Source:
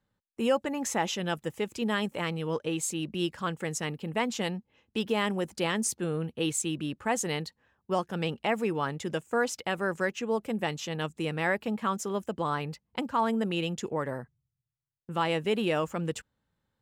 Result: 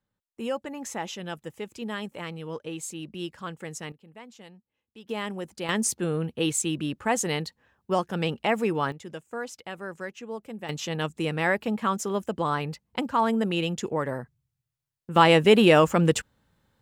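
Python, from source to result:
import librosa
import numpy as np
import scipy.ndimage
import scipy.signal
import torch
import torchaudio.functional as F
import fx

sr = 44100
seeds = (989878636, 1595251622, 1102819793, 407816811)

y = fx.gain(x, sr, db=fx.steps((0.0, -4.5), (3.92, -17.0), (5.09, -4.0), (5.69, 3.5), (8.92, -7.0), (10.69, 3.5), (15.16, 11.0)))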